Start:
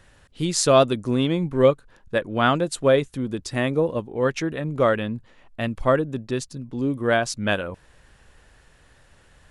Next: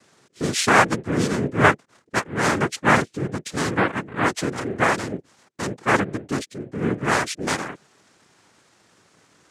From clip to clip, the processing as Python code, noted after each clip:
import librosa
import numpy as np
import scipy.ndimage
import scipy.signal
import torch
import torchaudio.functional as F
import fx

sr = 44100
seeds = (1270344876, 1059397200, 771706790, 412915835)

y = fx.noise_vocoder(x, sr, seeds[0], bands=3)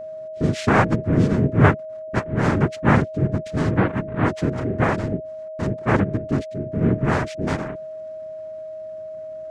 y = fx.riaa(x, sr, side='playback')
y = y + 10.0 ** (-28.0 / 20.0) * np.sin(2.0 * np.pi * 630.0 * np.arange(len(y)) / sr)
y = y * 10.0 ** (-3.0 / 20.0)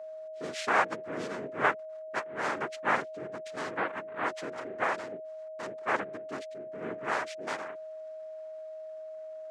y = scipy.signal.sosfilt(scipy.signal.butter(2, 640.0, 'highpass', fs=sr, output='sos'), x)
y = y * 10.0 ** (-5.5 / 20.0)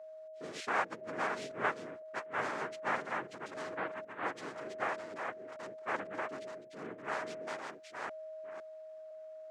y = fx.reverse_delay(x, sr, ms=506, wet_db=-3.5)
y = y * 10.0 ** (-7.0 / 20.0)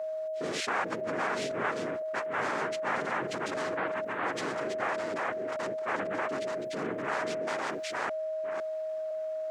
y = fx.env_flatten(x, sr, amount_pct=70)